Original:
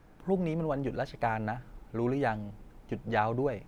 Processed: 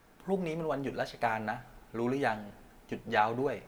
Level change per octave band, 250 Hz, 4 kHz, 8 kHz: -3.0 dB, +4.5 dB, no reading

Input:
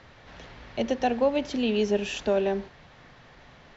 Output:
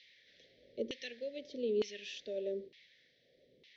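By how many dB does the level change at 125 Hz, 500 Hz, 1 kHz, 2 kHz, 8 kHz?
under -15 dB, -11.5 dB, under -30 dB, -14.0 dB, no reading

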